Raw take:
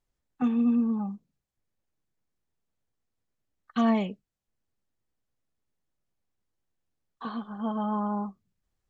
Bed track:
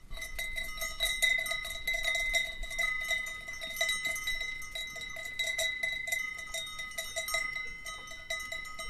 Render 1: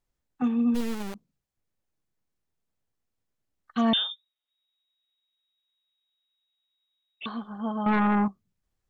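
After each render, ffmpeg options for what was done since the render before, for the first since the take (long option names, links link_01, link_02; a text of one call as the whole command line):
ffmpeg -i in.wav -filter_complex "[0:a]asplit=3[link_01][link_02][link_03];[link_01]afade=type=out:start_time=0.74:duration=0.02[link_04];[link_02]acrusher=bits=3:dc=4:mix=0:aa=0.000001,afade=type=in:start_time=0.74:duration=0.02,afade=type=out:start_time=1.14:duration=0.02[link_05];[link_03]afade=type=in:start_time=1.14:duration=0.02[link_06];[link_04][link_05][link_06]amix=inputs=3:normalize=0,asettb=1/sr,asplit=3[link_07][link_08][link_09];[link_07]atrim=end=3.934[link_10];[link_08]atrim=start=3.93:end=7.26,asetpts=PTS-STARTPTS,afade=type=in:duration=0.004:curve=qsin,afade=type=out:start_time=3.326:duration=0.004:curve=qsin,lowpass=frequency=3200:width_type=q:width=0.5098,lowpass=frequency=3200:width_type=q:width=0.6013,lowpass=frequency=3200:width_type=q:width=0.9,lowpass=frequency=3200:width_type=q:width=2.563,afreqshift=-3800[link_11];[link_09]atrim=start=7.256[link_12];[link_10][link_11]acrossfade=duration=0.004:curve1=hsin:curve2=qsin[link_13];[link_13][link_12]acrossfade=duration=0.004:curve1=qsin:curve2=hsin,asettb=1/sr,asplit=3[link_14][link_15][link_16];[link_14]atrim=end=7.864[link_17];[link_15]atrim=start=7.86:end=8.28,asetpts=PTS-STARTPTS,afade=type=in:duration=0.004:curve=qsin,afade=type=out:start_time=0.416:duration=0.004:curve=qsin,aeval=exprs='0.112*sin(PI/2*2.24*val(0)/0.112)':channel_layout=same[link_18];[link_16]atrim=start=8.276[link_19];[link_17][link_18]acrossfade=duration=0.004:curve1=hsin:curve2=qsin[link_20];[link_20][link_19]acrossfade=duration=0.004:curve1=qsin:curve2=hsin" out.wav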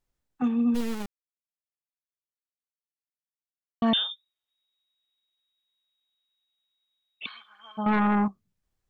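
ffmpeg -i in.wav -filter_complex "[0:a]asplit=3[link_01][link_02][link_03];[link_01]afade=type=out:start_time=7.25:duration=0.02[link_04];[link_02]highpass=frequency=2300:width_type=q:width=14,afade=type=in:start_time=7.25:duration=0.02,afade=type=out:start_time=7.77:duration=0.02[link_05];[link_03]afade=type=in:start_time=7.77:duration=0.02[link_06];[link_04][link_05][link_06]amix=inputs=3:normalize=0,asplit=3[link_07][link_08][link_09];[link_07]atrim=end=1.06,asetpts=PTS-STARTPTS,afade=type=out:start_time=1.056:duration=0.004:curve=hsin[link_10];[link_08]atrim=start=1.06:end=3.82,asetpts=PTS-STARTPTS,volume=0[link_11];[link_09]atrim=start=3.82,asetpts=PTS-STARTPTS,afade=type=in:duration=0.004:curve=hsin[link_12];[link_10][link_11][link_12]concat=n=3:v=0:a=1" out.wav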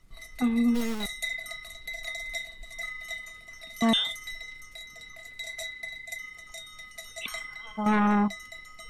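ffmpeg -i in.wav -i bed.wav -filter_complex "[1:a]volume=-5dB[link_01];[0:a][link_01]amix=inputs=2:normalize=0" out.wav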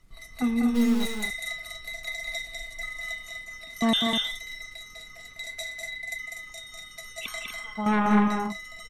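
ffmpeg -i in.wav -af "aecho=1:1:198.3|244.9:0.631|0.447" out.wav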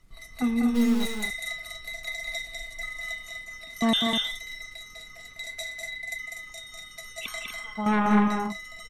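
ffmpeg -i in.wav -af anull out.wav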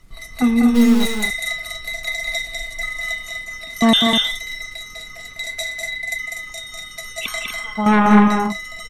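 ffmpeg -i in.wav -af "volume=9.5dB" out.wav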